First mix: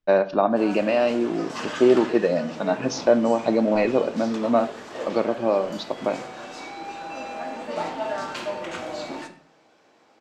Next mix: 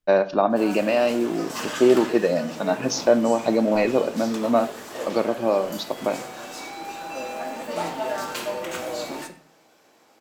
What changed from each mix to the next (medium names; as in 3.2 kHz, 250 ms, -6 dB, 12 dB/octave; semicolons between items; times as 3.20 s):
second voice: remove static phaser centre 440 Hz, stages 6; master: remove distance through air 92 m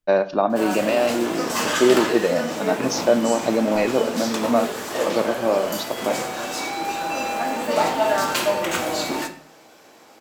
background +8.5 dB